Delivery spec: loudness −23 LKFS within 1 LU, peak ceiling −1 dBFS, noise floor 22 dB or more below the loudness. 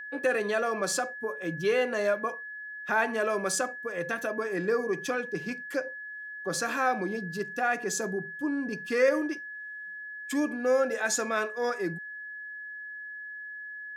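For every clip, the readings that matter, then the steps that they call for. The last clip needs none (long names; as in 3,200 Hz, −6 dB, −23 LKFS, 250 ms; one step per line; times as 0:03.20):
interfering tone 1,700 Hz; level of the tone −38 dBFS; integrated loudness −30.5 LKFS; sample peak −13.0 dBFS; target loudness −23.0 LKFS
→ notch filter 1,700 Hz, Q 30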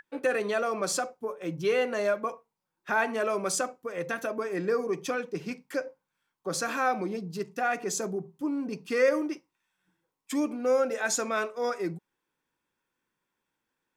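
interfering tone none found; integrated loudness −30.0 LKFS; sample peak −13.0 dBFS; target loudness −23.0 LKFS
→ level +7 dB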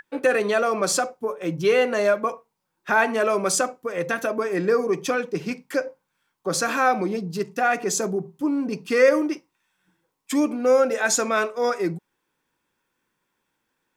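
integrated loudness −23.0 LKFS; sample peak −6.0 dBFS; background noise floor −77 dBFS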